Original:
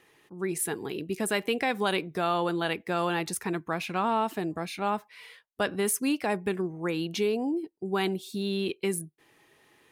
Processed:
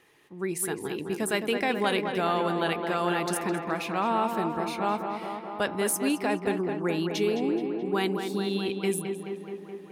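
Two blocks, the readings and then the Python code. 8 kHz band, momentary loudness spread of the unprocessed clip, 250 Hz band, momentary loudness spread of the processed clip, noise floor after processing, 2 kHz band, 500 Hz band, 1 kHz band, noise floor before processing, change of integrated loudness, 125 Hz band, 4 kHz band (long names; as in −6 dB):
0.0 dB, 8 LU, +2.0 dB, 7 LU, −44 dBFS, +1.0 dB, +2.0 dB, +2.0 dB, −66 dBFS, +1.0 dB, +1.0 dB, +0.5 dB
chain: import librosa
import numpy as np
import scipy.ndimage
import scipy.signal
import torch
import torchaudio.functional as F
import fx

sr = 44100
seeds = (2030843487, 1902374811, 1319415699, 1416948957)

y = fx.echo_tape(x, sr, ms=213, feedback_pct=83, wet_db=-5.5, lp_hz=2500.0, drive_db=12.0, wow_cents=14)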